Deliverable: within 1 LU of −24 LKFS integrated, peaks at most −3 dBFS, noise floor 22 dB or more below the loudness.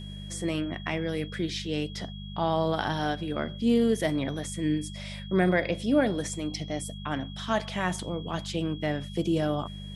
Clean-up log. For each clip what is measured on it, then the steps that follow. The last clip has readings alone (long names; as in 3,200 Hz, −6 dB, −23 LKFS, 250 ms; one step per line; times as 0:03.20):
mains hum 50 Hz; hum harmonics up to 200 Hz; level of the hum −38 dBFS; interfering tone 3,300 Hz; level of the tone −46 dBFS; integrated loudness −29.5 LKFS; sample peak −11.5 dBFS; target loudness −24.0 LKFS
→ hum removal 50 Hz, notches 4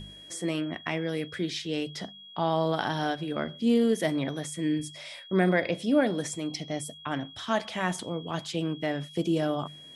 mains hum none found; interfering tone 3,300 Hz; level of the tone −46 dBFS
→ notch filter 3,300 Hz, Q 30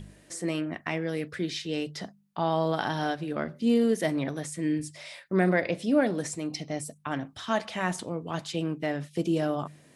interfering tone none found; integrated loudness −29.5 LKFS; sample peak −11.5 dBFS; target loudness −24.0 LKFS
→ level +5.5 dB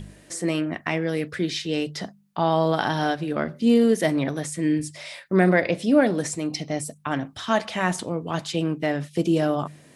integrated loudness −24.0 LKFS; sample peak −6.0 dBFS; background noise floor −53 dBFS